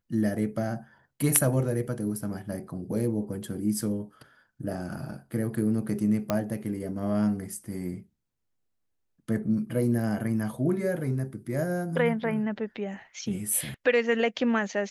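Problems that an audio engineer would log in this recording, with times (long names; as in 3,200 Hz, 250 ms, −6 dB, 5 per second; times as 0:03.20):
0:06.30: click −12 dBFS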